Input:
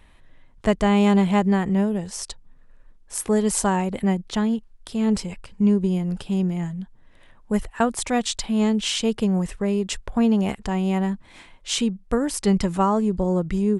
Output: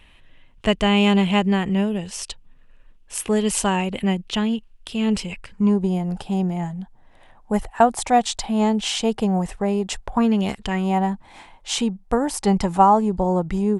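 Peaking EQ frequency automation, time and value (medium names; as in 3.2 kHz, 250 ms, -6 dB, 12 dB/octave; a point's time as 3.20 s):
peaking EQ +12.5 dB 0.56 oct
5.31 s 2.8 kHz
5.77 s 780 Hz
10.13 s 780 Hz
10.54 s 5.7 kHz
10.91 s 820 Hz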